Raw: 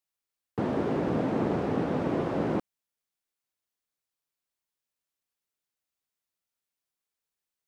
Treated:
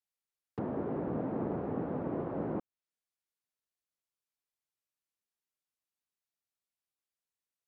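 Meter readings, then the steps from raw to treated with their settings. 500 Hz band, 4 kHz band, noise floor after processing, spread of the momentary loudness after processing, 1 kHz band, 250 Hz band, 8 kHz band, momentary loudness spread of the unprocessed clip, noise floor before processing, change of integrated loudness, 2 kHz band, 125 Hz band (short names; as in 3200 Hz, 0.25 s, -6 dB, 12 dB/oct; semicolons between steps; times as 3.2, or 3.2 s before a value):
-7.0 dB, under -20 dB, under -85 dBFS, 5 LU, -8.0 dB, -7.0 dB, n/a, 5 LU, under -85 dBFS, -7.0 dB, -13.0 dB, -7.0 dB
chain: treble ducked by the level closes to 1300 Hz, closed at -29 dBFS; gain -7 dB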